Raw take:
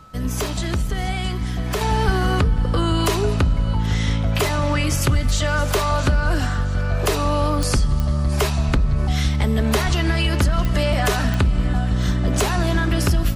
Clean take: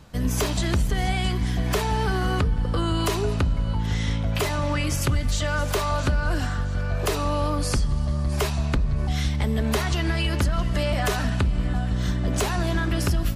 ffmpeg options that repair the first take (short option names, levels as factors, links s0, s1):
-filter_complex "[0:a]adeclick=t=4,bandreject=f=1300:w=30,asplit=3[s0][s1][s2];[s0]afade=t=out:st=2.05:d=0.02[s3];[s1]highpass=f=140:w=0.5412,highpass=f=140:w=1.3066,afade=t=in:st=2.05:d=0.02,afade=t=out:st=2.17:d=0.02[s4];[s2]afade=t=in:st=2.17:d=0.02[s5];[s3][s4][s5]amix=inputs=3:normalize=0,asplit=3[s6][s7][s8];[s6]afade=t=out:st=8.66:d=0.02[s9];[s7]highpass=f=140:w=0.5412,highpass=f=140:w=1.3066,afade=t=in:st=8.66:d=0.02,afade=t=out:st=8.78:d=0.02[s10];[s8]afade=t=in:st=8.78:d=0.02[s11];[s9][s10][s11]amix=inputs=3:normalize=0,asplit=3[s12][s13][s14];[s12]afade=t=out:st=9.84:d=0.02[s15];[s13]highpass=f=140:w=0.5412,highpass=f=140:w=1.3066,afade=t=in:st=9.84:d=0.02,afade=t=out:st=9.96:d=0.02[s16];[s14]afade=t=in:st=9.96:d=0.02[s17];[s15][s16][s17]amix=inputs=3:normalize=0,asetnsamples=n=441:p=0,asendcmd='1.81 volume volume -4.5dB',volume=1"